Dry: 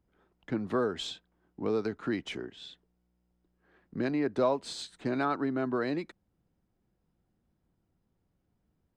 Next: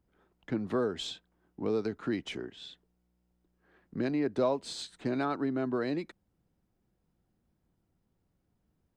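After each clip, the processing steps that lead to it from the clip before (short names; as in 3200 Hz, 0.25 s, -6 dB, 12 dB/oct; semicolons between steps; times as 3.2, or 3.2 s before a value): dynamic EQ 1300 Hz, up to -4 dB, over -43 dBFS, Q 0.84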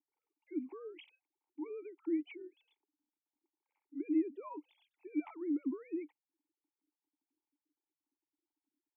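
sine-wave speech; vowel filter u; gain +2 dB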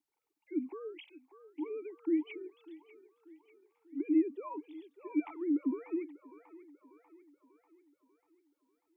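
band-limited delay 0.592 s, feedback 52%, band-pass 980 Hz, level -10 dB; gain +4 dB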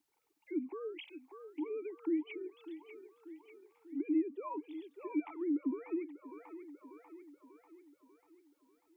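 compressor 1.5:1, threshold -54 dBFS, peak gain reduction 11 dB; gain +6.5 dB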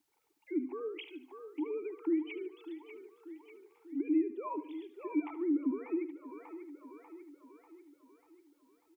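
feedback echo 74 ms, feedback 41%, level -14 dB; gain +2.5 dB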